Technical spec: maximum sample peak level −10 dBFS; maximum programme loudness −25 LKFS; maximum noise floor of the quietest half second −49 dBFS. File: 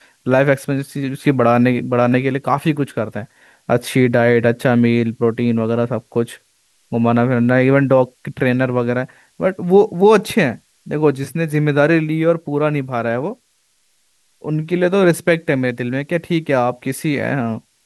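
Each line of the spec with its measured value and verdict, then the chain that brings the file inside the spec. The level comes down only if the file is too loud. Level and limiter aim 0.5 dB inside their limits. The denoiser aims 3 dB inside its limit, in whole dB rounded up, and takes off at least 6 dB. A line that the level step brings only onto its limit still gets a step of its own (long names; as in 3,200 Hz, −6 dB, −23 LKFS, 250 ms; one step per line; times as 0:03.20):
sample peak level −2.0 dBFS: out of spec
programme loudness −17.0 LKFS: out of spec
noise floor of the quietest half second −61 dBFS: in spec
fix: level −8.5 dB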